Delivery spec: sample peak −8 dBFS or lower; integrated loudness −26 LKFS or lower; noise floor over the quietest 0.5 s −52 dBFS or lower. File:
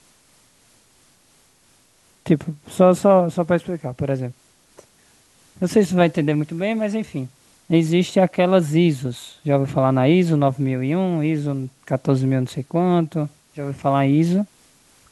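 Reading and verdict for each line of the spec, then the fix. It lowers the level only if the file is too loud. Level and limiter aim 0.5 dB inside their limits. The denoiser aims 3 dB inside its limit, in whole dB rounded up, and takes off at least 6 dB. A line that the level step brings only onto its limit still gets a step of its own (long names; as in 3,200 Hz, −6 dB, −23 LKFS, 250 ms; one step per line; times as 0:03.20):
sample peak −4.0 dBFS: out of spec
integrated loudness −20.0 LKFS: out of spec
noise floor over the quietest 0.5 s −57 dBFS: in spec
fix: level −6.5 dB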